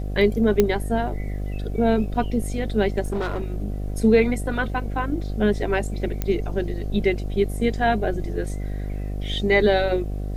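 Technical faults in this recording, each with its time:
buzz 50 Hz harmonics 15 -28 dBFS
0.60 s: pop -5 dBFS
3.01–3.52 s: clipped -21.5 dBFS
6.22 s: pop -11 dBFS

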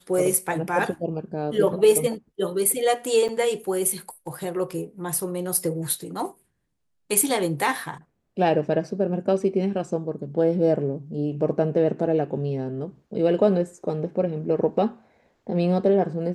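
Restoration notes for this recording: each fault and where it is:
3.28–3.29 s: dropout 6.8 ms

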